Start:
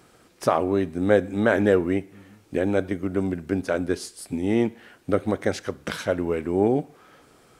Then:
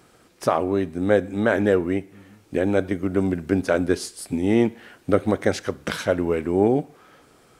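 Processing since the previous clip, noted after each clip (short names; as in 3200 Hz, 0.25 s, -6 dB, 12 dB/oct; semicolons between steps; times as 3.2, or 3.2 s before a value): vocal rider within 3 dB 2 s; gain +2.5 dB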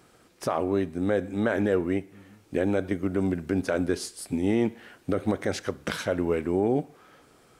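limiter -11 dBFS, peak gain reduction 8 dB; gain -3 dB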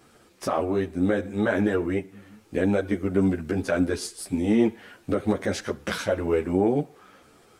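ensemble effect; gain +5 dB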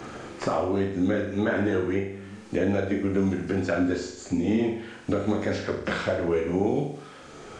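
nonlinear frequency compression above 4000 Hz 1.5:1; flutter echo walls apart 7 m, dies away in 0.54 s; three-band squash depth 70%; gain -3 dB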